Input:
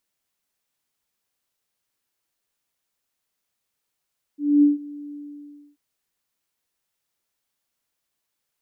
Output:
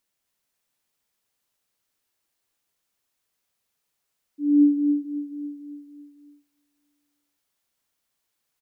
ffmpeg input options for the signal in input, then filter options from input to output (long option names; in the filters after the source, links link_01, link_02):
-f lavfi -i "aevalsrc='0.299*sin(2*PI*291*t)':duration=1.386:sample_rate=44100,afade=type=in:duration=0.246,afade=type=out:start_time=0.246:duration=0.15:silence=0.075,afade=type=out:start_time=0.76:duration=0.626"
-af "aecho=1:1:276|552|828|1104|1380|1656:0.562|0.276|0.135|0.0662|0.0324|0.0159"